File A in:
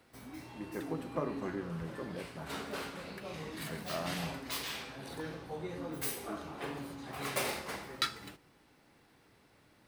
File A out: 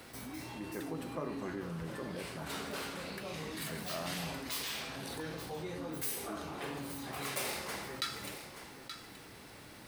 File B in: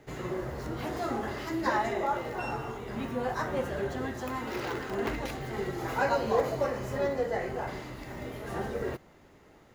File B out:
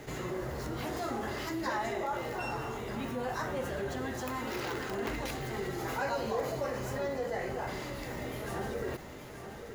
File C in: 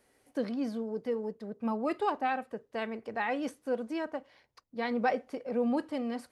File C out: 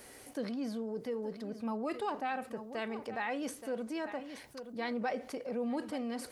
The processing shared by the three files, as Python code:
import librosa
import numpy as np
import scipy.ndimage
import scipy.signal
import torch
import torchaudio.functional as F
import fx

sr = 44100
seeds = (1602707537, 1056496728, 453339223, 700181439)

p1 = fx.high_shelf(x, sr, hz=3600.0, db=6.0)
p2 = p1 + fx.echo_single(p1, sr, ms=876, db=-18.5, dry=0)
p3 = fx.env_flatten(p2, sr, amount_pct=50)
y = F.gain(torch.from_numpy(p3), -8.0).numpy()